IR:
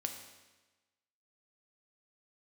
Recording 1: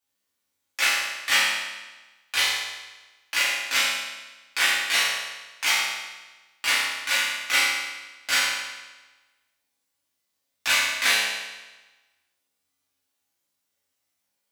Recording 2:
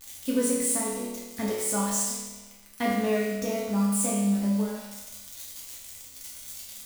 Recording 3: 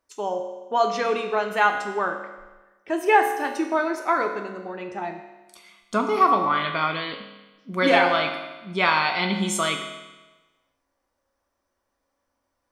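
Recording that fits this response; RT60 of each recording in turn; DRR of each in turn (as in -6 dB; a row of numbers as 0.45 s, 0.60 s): 3; 1.2 s, 1.2 s, 1.2 s; -10.0 dB, -6.0 dB, 4.0 dB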